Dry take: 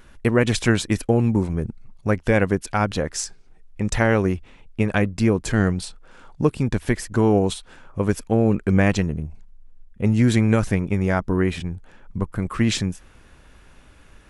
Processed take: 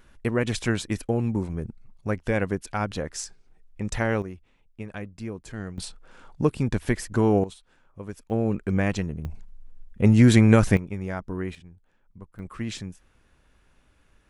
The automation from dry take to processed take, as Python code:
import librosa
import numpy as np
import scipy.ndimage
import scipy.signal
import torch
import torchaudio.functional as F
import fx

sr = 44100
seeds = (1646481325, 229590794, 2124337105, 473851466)

y = fx.gain(x, sr, db=fx.steps((0.0, -6.5), (4.22, -16.0), (5.78, -3.0), (7.44, -16.0), (8.3, -6.5), (9.25, 2.0), (10.77, -10.5), (11.55, -19.5), (12.39, -12.0)))